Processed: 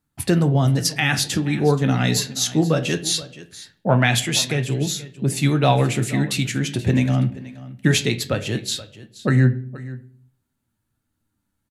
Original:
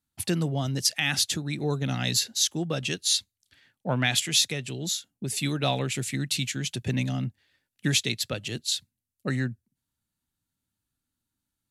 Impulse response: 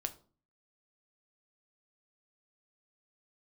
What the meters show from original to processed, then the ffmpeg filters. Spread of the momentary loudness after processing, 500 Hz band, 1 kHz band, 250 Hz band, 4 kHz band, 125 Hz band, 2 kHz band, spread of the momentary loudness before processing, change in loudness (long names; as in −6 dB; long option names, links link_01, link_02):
11 LU, +10.5 dB, +10.5 dB, +10.0 dB, +1.5 dB, +11.0 dB, +6.5 dB, 8 LU, +6.5 dB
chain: -filter_complex "[0:a]flanger=delay=6.5:depth=6.4:regen=64:speed=0.2:shape=triangular,aecho=1:1:477:0.133,asplit=2[link_01][link_02];[1:a]atrim=start_sample=2205,asetrate=27783,aresample=44100,lowpass=2300[link_03];[link_02][link_03]afir=irnorm=-1:irlink=0,volume=0.5dB[link_04];[link_01][link_04]amix=inputs=2:normalize=0,volume=7.5dB"